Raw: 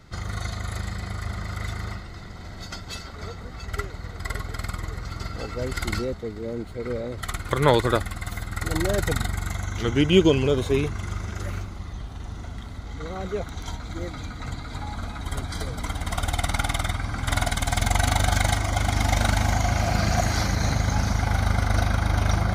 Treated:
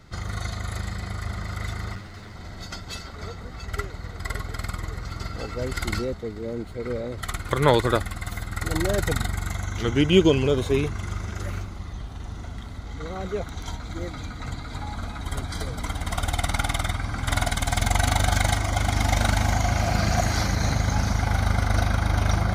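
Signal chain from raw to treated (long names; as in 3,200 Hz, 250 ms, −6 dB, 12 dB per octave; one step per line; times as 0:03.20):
0:01.95–0:02.35: lower of the sound and its delayed copy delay 9.7 ms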